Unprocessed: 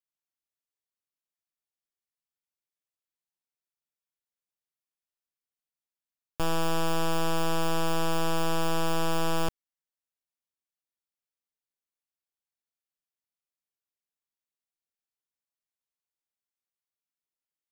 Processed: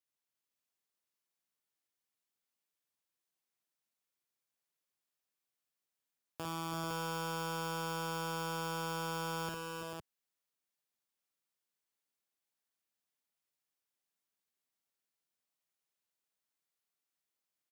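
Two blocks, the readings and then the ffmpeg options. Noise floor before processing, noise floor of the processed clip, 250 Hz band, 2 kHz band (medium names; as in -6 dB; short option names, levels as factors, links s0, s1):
under -85 dBFS, under -85 dBFS, -11.0 dB, -6.5 dB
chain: -af "highpass=110,alimiter=level_in=1.88:limit=0.0631:level=0:latency=1:release=42,volume=0.531,aecho=1:1:54|82|323|340|441|510:0.668|0.126|0.282|0.422|0.398|0.631"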